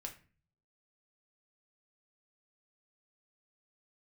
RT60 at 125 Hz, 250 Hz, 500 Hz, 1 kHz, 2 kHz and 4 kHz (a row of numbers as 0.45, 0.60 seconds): 0.85, 0.65, 0.40, 0.35, 0.40, 0.30 seconds